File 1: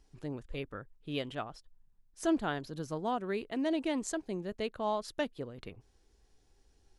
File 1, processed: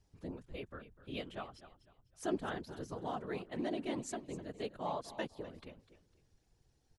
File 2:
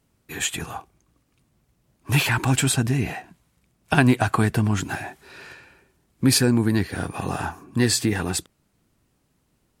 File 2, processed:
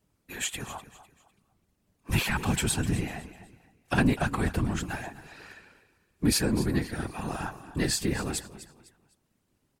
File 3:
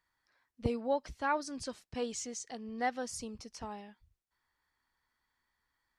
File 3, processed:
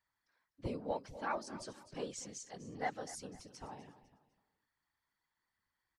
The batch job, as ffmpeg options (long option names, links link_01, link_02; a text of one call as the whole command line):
ffmpeg -i in.wav -af "asoftclip=type=tanh:threshold=-7.5dB,aecho=1:1:251|502|753:0.178|0.0569|0.0182,afftfilt=real='hypot(re,im)*cos(2*PI*random(0))':imag='hypot(re,im)*sin(2*PI*random(1))':win_size=512:overlap=0.75" out.wav